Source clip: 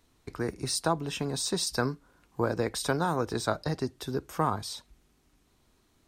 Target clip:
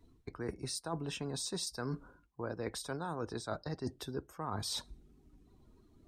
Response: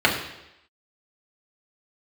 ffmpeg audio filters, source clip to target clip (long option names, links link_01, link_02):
-af "areverse,acompressor=threshold=-42dB:ratio=10,areverse,afftdn=noise_reduction=18:noise_floor=-66,volume=6.5dB"